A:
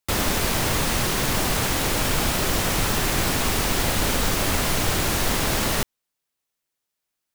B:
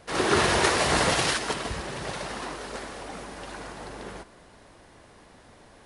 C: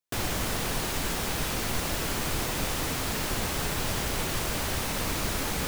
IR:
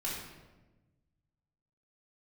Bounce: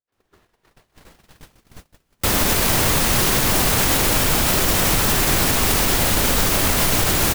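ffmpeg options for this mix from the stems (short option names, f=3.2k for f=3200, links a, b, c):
-filter_complex "[0:a]highshelf=f=10k:g=6.5,dynaudnorm=f=150:g=5:m=3dB,adelay=2150,volume=0dB[a];[1:a]lowpass=4.8k,volume=-19.5dB[b];[2:a]acrossover=split=270[c][d];[d]acompressor=threshold=-33dB:ratio=4[e];[c][e]amix=inputs=2:normalize=0,volume=-13dB[f];[a][f]amix=inputs=2:normalize=0,dynaudnorm=f=220:g=9:m=7.5dB,alimiter=limit=-7.5dB:level=0:latency=1:release=76,volume=0dB[g];[b][g]amix=inputs=2:normalize=0,agate=range=-31dB:threshold=-35dB:ratio=16:detection=peak"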